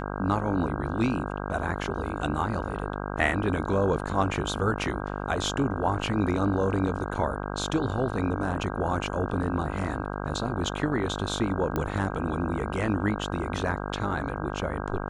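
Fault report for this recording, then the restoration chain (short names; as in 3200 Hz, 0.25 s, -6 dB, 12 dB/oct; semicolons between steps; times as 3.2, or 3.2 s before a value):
buzz 50 Hz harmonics 32 -33 dBFS
11.76 pop -15 dBFS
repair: de-click; de-hum 50 Hz, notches 32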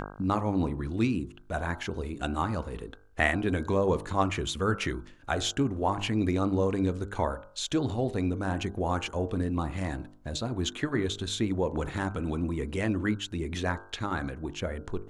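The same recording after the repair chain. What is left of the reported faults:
none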